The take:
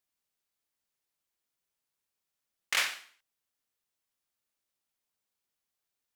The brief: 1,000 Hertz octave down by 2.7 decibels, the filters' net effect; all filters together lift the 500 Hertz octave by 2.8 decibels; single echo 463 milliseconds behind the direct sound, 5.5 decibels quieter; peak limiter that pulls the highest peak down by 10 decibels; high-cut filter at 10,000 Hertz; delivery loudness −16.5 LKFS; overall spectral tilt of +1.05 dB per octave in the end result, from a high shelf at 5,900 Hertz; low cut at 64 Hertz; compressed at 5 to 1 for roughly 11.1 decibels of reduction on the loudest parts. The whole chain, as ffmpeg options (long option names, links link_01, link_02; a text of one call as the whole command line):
ffmpeg -i in.wav -af "highpass=64,lowpass=10000,equalizer=frequency=500:width_type=o:gain=5,equalizer=frequency=1000:width_type=o:gain=-5,highshelf=frequency=5900:gain=8,acompressor=threshold=-35dB:ratio=5,alimiter=level_in=4.5dB:limit=-24dB:level=0:latency=1,volume=-4.5dB,aecho=1:1:463:0.531,volume=28dB" out.wav